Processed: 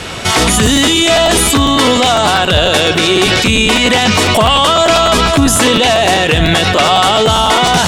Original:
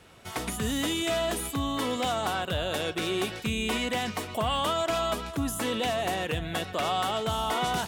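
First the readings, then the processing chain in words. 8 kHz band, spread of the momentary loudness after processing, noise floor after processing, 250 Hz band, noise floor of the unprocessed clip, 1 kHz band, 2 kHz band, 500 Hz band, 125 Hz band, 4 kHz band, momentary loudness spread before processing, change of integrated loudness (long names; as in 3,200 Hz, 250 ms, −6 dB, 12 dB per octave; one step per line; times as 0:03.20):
+22.0 dB, 1 LU, −13 dBFS, +18.5 dB, −41 dBFS, +18.5 dB, +20.5 dB, +18.5 dB, +19.5 dB, +22.0 dB, 4 LU, +20.0 dB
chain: high-shelf EQ 3,300 Hz +11.5 dB
in parallel at −4 dB: soft clipping −29.5 dBFS, distortion −8 dB
on the sum: high-frequency loss of the air 72 metres
boost into a limiter +26 dB
regular buffer underruns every 0.10 s, samples 512, repeat, from 0:00.65
level −1 dB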